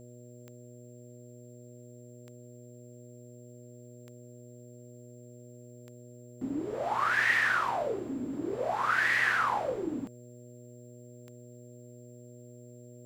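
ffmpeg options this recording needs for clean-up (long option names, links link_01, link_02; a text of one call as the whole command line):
ffmpeg -i in.wav -af "adeclick=threshold=4,bandreject=frequency=121.6:width_type=h:width=4,bandreject=frequency=243.2:width_type=h:width=4,bandreject=frequency=364.8:width_type=h:width=4,bandreject=frequency=486.4:width_type=h:width=4,bandreject=frequency=608:width_type=h:width=4,bandreject=frequency=7400:width=30,agate=range=-21dB:threshold=-43dB" out.wav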